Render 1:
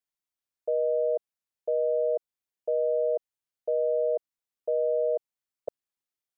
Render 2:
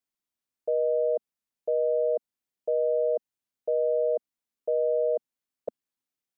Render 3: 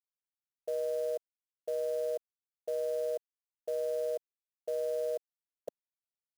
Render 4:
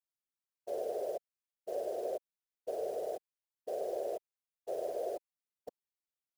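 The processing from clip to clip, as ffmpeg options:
-af "equalizer=f=240:w=1.7:g=7.5"
-af "aeval=exprs='sgn(val(0))*max(abs(val(0))-0.00119,0)':c=same,acrusher=bits=5:mode=log:mix=0:aa=0.000001,volume=-8dB"
-af "afftfilt=real='hypot(re,im)*cos(2*PI*random(0))':imag='hypot(re,im)*sin(2*PI*random(1))':win_size=512:overlap=0.75,volume=2dB"

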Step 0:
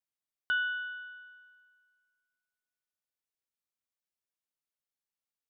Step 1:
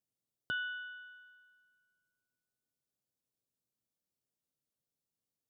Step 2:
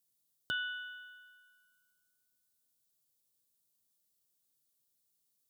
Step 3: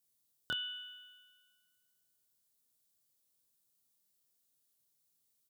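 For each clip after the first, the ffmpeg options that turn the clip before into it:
-af "equalizer=f=125:t=o:w=1:g=12,equalizer=f=250:t=o:w=1:g=6,equalizer=f=500:t=o:w=1:g=5,equalizer=f=1k:t=o:w=1:g=-4,equalizer=f=2k:t=o:w=1:g=-12,volume=1dB"
-af "aexciter=amount=2.3:drive=7.2:freq=3.3k"
-filter_complex "[0:a]asplit=2[a][b];[b]adelay=26,volume=-2.5dB[c];[a][c]amix=inputs=2:normalize=0,volume=-1dB"

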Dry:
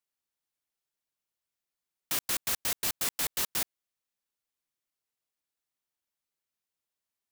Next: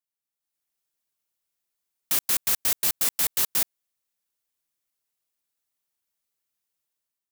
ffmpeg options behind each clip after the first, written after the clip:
-af "dynaudnorm=f=200:g=5:m=10dB,highshelf=f=6.8k:g=7,volume=-8dB"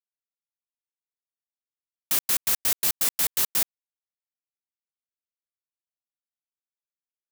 -af "acrusher=bits=7:mix=0:aa=0.5"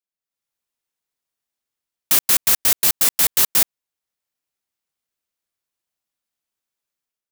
-af "dynaudnorm=f=100:g=7:m=11dB"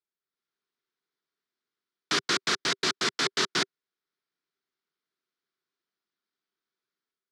-af "highpass=f=140:w=0.5412,highpass=f=140:w=1.3066,equalizer=f=390:t=q:w=4:g=9,equalizer=f=560:t=q:w=4:g=-8,equalizer=f=820:t=q:w=4:g=-7,equalizer=f=1.4k:t=q:w=4:g=5,equalizer=f=2.7k:t=q:w=4:g=-6,lowpass=f=4.9k:w=0.5412,lowpass=f=4.9k:w=1.3066"

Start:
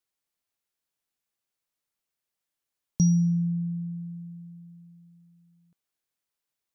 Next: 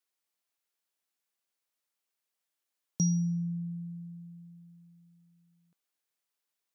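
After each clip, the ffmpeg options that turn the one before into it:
-af "highpass=f=330:p=1"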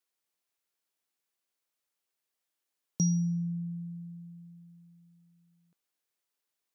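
-af "equalizer=f=370:w=1.5:g=2.5"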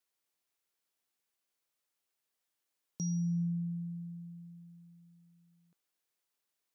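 -af "alimiter=level_in=4.5dB:limit=-24dB:level=0:latency=1,volume=-4.5dB"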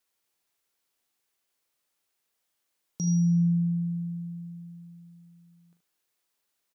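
-af "aecho=1:1:40.82|75.8:0.355|0.316,volume=5.5dB"

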